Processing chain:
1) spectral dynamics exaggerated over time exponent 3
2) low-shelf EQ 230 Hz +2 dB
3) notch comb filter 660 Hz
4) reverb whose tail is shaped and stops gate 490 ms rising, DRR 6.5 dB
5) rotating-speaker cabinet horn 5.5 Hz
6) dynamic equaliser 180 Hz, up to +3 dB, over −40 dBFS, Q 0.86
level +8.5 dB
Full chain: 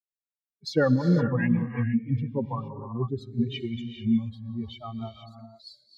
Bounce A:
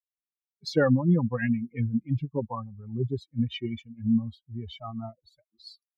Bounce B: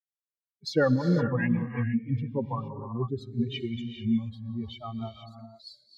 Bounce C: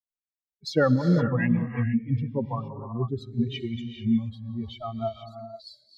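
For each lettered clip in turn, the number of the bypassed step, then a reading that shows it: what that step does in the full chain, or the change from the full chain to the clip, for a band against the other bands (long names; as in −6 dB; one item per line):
4, change in momentary loudness spread −1 LU
6, 250 Hz band −2.0 dB
3, 1 kHz band +2.0 dB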